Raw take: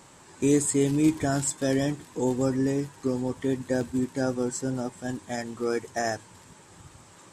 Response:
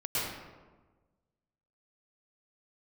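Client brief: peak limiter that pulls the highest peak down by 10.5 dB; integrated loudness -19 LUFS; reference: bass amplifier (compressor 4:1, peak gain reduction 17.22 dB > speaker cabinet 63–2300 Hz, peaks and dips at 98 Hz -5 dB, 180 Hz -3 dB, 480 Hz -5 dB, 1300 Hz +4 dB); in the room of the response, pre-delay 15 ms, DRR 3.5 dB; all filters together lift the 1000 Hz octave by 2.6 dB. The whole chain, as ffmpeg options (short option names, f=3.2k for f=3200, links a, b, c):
-filter_complex "[0:a]equalizer=f=1k:t=o:g=3.5,alimiter=limit=-21dB:level=0:latency=1,asplit=2[a][b];[1:a]atrim=start_sample=2205,adelay=15[c];[b][c]afir=irnorm=-1:irlink=0,volume=-11.5dB[d];[a][d]amix=inputs=2:normalize=0,acompressor=threshold=-42dB:ratio=4,highpass=f=63:w=0.5412,highpass=f=63:w=1.3066,equalizer=f=98:t=q:w=4:g=-5,equalizer=f=180:t=q:w=4:g=-3,equalizer=f=480:t=q:w=4:g=-5,equalizer=f=1.3k:t=q:w=4:g=4,lowpass=f=2.3k:w=0.5412,lowpass=f=2.3k:w=1.3066,volume=25.5dB"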